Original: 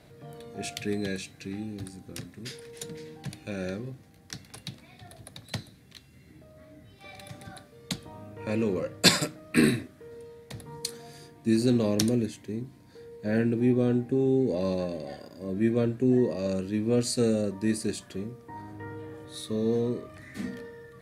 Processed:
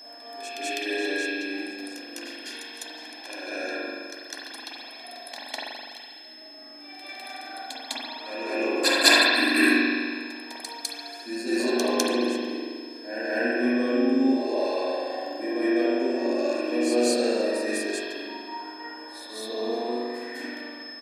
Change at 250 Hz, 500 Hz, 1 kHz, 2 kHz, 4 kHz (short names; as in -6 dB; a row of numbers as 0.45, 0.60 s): +1.0, +3.0, +10.0, +11.5, +6.5 dB